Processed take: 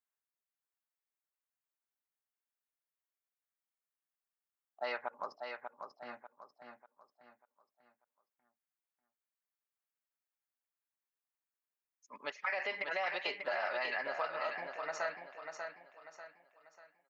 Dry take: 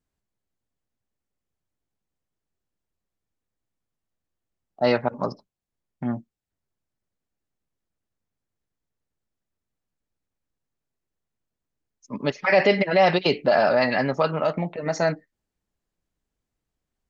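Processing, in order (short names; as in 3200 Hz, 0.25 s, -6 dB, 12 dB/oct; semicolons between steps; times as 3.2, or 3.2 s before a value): HPF 1400 Hz 12 dB/oct; bell 4800 Hz -14 dB 2.2 oct; compressor, threshold -33 dBFS, peak gain reduction 7.5 dB; on a send: feedback echo 0.592 s, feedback 38%, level -6 dB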